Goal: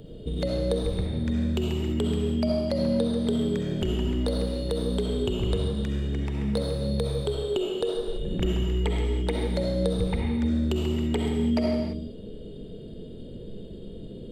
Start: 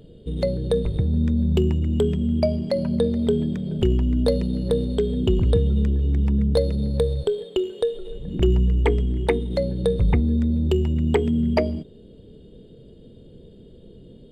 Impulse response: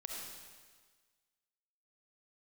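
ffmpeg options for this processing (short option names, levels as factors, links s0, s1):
-filter_complex "[0:a]acrossover=split=560|3200[s0][s1][s2];[s0]acompressor=threshold=0.0251:ratio=4[s3];[s1]acompressor=threshold=0.00794:ratio=4[s4];[s2]acompressor=threshold=0.00631:ratio=4[s5];[s3][s4][s5]amix=inputs=3:normalize=0[s6];[1:a]atrim=start_sample=2205,afade=t=out:st=0.4:d=0.01,atrim=end_sample=18081[s7];[s6][s7]afir=irnorm=-1:irlink=0,volume=2.37"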